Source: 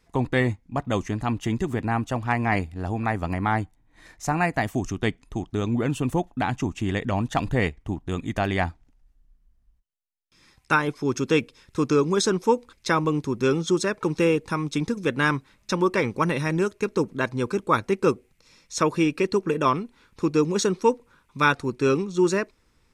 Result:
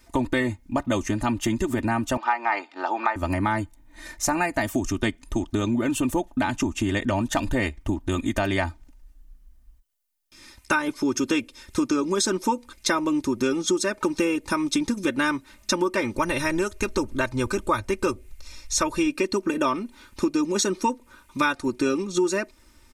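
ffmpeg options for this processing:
-filter_complex "[0:a]asettb=1/sr,asplit=3[a][b][c];[a]atrim=end=2.174[d];[b]atrim=start=2.17:end=3.16,asetpts=PTS-STARTPTS,afade=t=in:d=0.004:c=qsin,afade=t=out:st=0.986:d=0.004:c=qsin,highpass=f=400:w=0.5412,highpass=f=400:w=1.3066,equalizer=f=590:t=q:w=4:g=-5,equalizer=f=850:t=q:w=4:g=9,equalizer=f=1.3k:t=q:w=4:g=8,lowpass=f=5.2k:w=0.5412,lowpass=f=5.2k:w=1.3066[e];[c]atrim=start=3.156[f];[d][e]acrossfade=d=0.004:c1=hsin:c2=qsin[g];[g][f]acrossfade=d=0.004:c1=qsin:c2=hsin,asplit=3[h][i][j];[h]afade=t=out:st=16.16:d=0.02[k];[i]asubboost=boost=7.5:cutoff=78,afade=t=in:st=16.16:d=0.02,afade=t=out:st=19.06:d=0.02[l];[j]afade=t=in:st=19.06:d=0.02[m];[k][l][m]amix=inputs=3:normalize=0,highshelf=f=7.3k:g=9.5,aecho=1:1:3.3:0.8,acompressor=threshold=-27dB:ratio=4,volume=5.5dB"

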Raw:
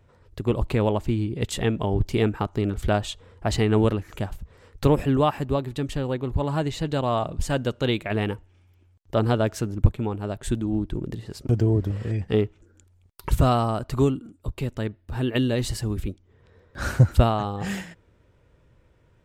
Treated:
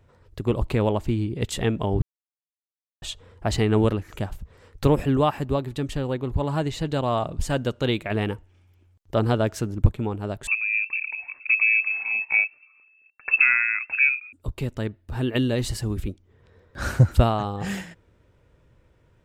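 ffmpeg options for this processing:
-filter_complex "[0:a]asettb=1/sr,asplit=3[a][b][c];[a]atrim=end=10.474[d];[b]atrim=start=10.47:end=14.33,asetpts=PTS-STARTPTS,afade=t=in:d=0.004:c=qsin,afade=t=out:st=3.856:d=0.004:c=qsin,lowpass=f=2.3k:t=q:w=0.5098,lowpass=f=2.3k:t=q:w=0.6013,lowpass=f=2.3k:t=q:w=0.9,lowpass=f=2.3k:t=q:w=2.563,afreqshift=-2700[e];[c]atrim=start=14.326[f];[d][e]acrossfade=d=0.004:c1=hsin:c2=qsin[g];[g][f]acrossfade=d=0.004:c1=qsin:c2=hsin,asplit=3[h][i][j];[h]atrim=end=2.02,asetpts=PTS-STARTPTS,afade=t=out:st=2.016:d=0.004:c=hsin[k];[i]atrim=start=2.02:end=3.02,asetpts=PTS-STARTPTS,volume=0[l];[j]atrim=start=3.02,asetpts=PTS-STARTPTS,afade=t=in:d=0.004:c=hsin[m];[k][l][m]concat=n=3:v=0:a=1"

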